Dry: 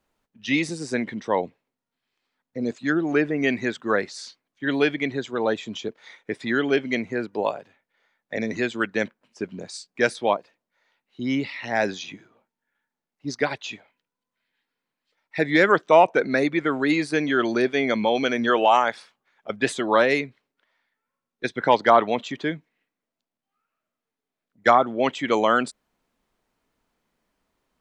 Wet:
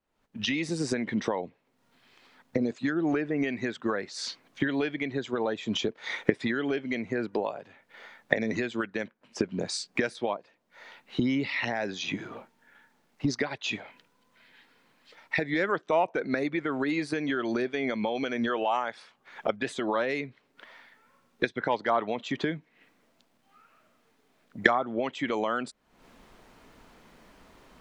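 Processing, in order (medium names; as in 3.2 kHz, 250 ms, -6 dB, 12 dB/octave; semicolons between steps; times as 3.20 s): recorder AGC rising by 63 dB/s; treble shelf 6.9 kHz -8.5 dB; trim -10 dB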